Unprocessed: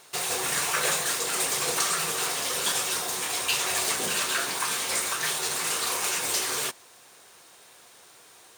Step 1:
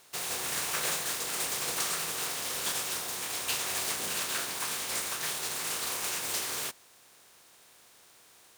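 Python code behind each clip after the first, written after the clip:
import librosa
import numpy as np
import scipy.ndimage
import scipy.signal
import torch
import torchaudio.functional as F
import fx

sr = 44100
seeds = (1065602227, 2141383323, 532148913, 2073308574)

y = fx.spec_flatten(x, sr, power=0.57)
y = y * librosa.db_to_amplitude(-5.5)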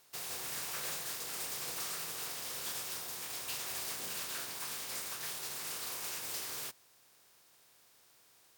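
y = np.clip(10.0 ** (27.5 / 20.0) * x, -1.0, 1.0) / 10.0 ** (27.5 / 20.0)
y = fx.graphic_eq_31(y, sr, hz=(125, 5000, 16000), db=(5, 3, 9))
y = y * librosa.db_to_amplitude(-8.5)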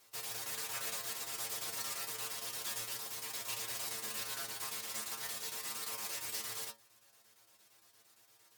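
y = fx.chopper(x, sr, hz=8.7, depth_pct=60, duty_pct=80)
y = fx.stiff_resonator(y, sr, f0_hz=110.0, decay_s=0.22, stiffness=0.002)
y = y * librosa.db_to_amplitude(8.5)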